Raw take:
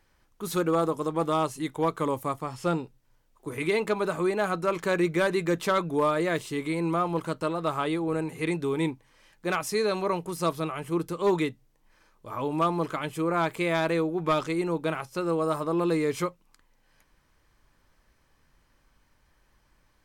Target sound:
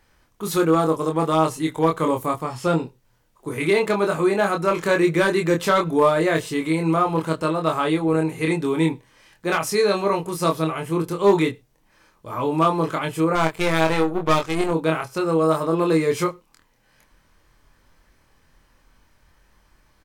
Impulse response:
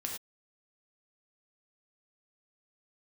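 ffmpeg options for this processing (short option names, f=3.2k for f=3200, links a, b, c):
-filter_complex "[0:a]asplit=2[a][b];[1:a]atrim=start_sample=2205[c];[b][c]afir=irnorm=-1:irlink=0,volume=-22.5dB[d];[a][d]amix=inputs=2:normalize=0,asettb=1/sr,asplit=3[e][f][g];[e]atrim=end=13.354[h];[f]atrim=start=13.35:end=14.71,asetpts=PTS-STARTPTS,afade=t=in:d=0.004:c=qsin,afade=t=out:st=1.356:d=0.004:c=qsin,aeval=exprs='0.168*(cos(1*acos(clip(val(0)/0.168,-1,1)))-cos(1*PI/2))+0.0133*(cos(3*acos(clip(val(0)/0.168,-1,1)))-cos(3*PI/2))+0.0266*(cos(4*acos(clip(val(0)/0.168,-1,1)))-cos(4*PI/2))+0.00944*(cos(7*acos(clip(val(0)/0.168,-1,1)))-cos(7*PI/2))':c=same[i];[g]atrim=start=14.706[j];[h][i]acrossfade=d=0.004:c1=hsin:c2=qsin[k];[k][j]acrossfade=d=0.004:c1=qsin:c2=hsin,asplit=2[l][m];[m]adelay=25,volume=-3.5dB[n];[l][n]amix=inputs=2:normalize=0,volume=4.5dB"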